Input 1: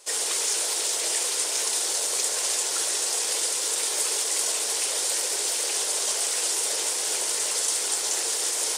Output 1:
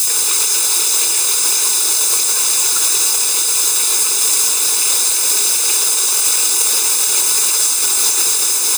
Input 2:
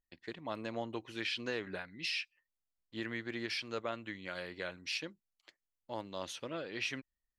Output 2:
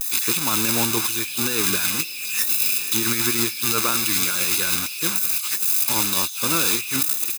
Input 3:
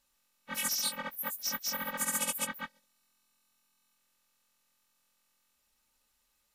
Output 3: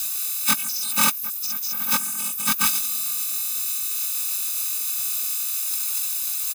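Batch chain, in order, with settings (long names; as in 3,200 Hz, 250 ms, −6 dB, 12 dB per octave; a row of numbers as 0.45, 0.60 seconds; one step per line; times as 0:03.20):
spike at every zero crossing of −21.5 dBFS
comb filter 0.8 ms, depth 72%
feedback delay with all-pass diffusion 515 ms, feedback 44%, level −13.5 dB
brickwall limiter −16 dBFS
compressor whose output falls as the input rises −33 dBFS, ratio −0.5
normalise the peak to −2 dBFS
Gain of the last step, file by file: +23.0, +11.5, +11.5 decibels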